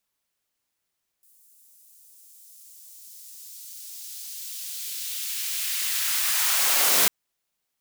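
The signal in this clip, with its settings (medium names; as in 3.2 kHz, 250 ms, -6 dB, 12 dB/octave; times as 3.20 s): swept filtered noise white, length 5.85 s highpass, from 9.1 kHz, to 120 Hz, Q 0.97, linear, gain ramp +39 dB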